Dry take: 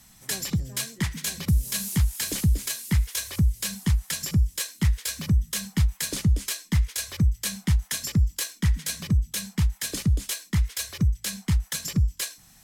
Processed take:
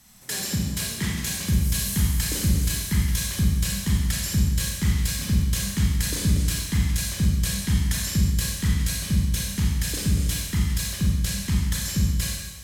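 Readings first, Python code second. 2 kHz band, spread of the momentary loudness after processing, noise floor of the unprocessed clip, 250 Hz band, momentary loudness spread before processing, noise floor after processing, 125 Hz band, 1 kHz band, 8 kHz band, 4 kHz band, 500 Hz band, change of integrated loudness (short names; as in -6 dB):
+2.5 dB, 3 LU, -55 dBFS, +3.0 dB, 4 LU, -34 dBFS, +1.5 dB, +2.0 dB, +2.5 dB, +2.5 dB, +2.5 dB, +2.0 dB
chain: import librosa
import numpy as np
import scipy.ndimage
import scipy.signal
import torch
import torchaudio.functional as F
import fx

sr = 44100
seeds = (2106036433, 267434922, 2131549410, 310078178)

y = fx.rev_schroeder(x, sr, rt60_s=1.2, comb_ms=31, drr_db=-2.5)
y = y * 10.0 ** (-2.0 / 20.0)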